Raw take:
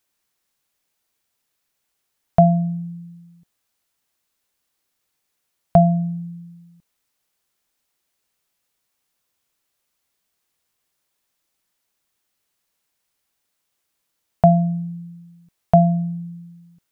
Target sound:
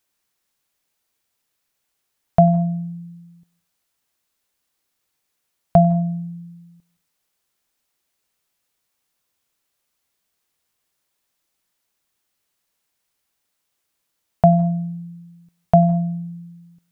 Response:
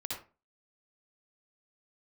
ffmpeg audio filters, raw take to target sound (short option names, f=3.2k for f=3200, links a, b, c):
-filter_complex "[0:a]asplit=2[a][b];[1:a]atrim=start_sample=2205,adelay=95[c];[b][c]afir=irnorm=-1:irlink=0,volume=-20dB[d];[a][d]amix=inputs=2:normalize=0"